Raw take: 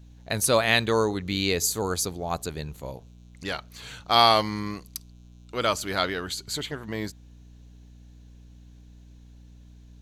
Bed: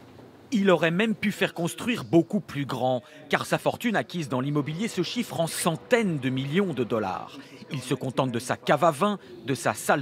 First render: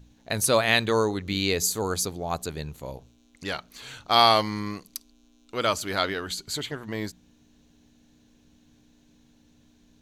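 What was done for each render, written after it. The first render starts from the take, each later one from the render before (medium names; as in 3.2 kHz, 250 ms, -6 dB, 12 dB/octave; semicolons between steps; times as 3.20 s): de-hum 60 Hz, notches 3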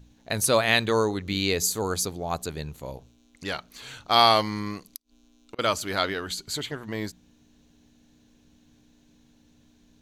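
4.91–5.59 s: inverted gate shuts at -26 dBFS, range -28 dB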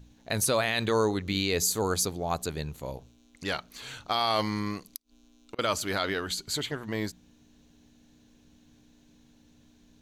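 peak limiter -15 dBFS, peak gain reduction 11 dB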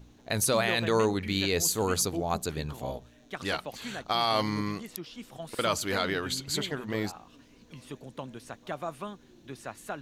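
add bed -15 dB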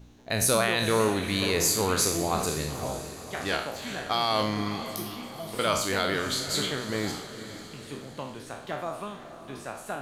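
spectral sustain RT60 0.58 s; echo that smears into a reverb 497 ms, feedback 50%, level -11.5 dB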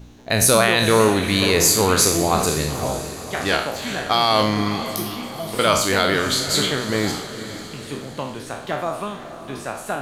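trim +8.5 dB; peak limiter -1 dBFS, peak gain reduction 1 dB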